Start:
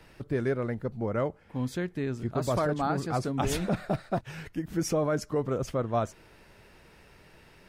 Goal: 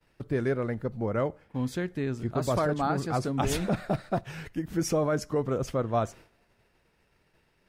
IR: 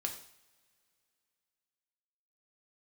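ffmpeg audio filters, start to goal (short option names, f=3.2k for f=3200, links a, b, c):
-filter_complex "[0:a]agate=range=-33dB:threshold=-45dB:ratio=3:detection=peak,asplit=2[a][b];[1:a]atrim=start_sample=2205,asetrate=52920,aresample=44100[c];[b][c]afir=irnorm=-1:irlink=0,volume=-16.5dB[d];[a][d]amix=inputs=2:normalize=0"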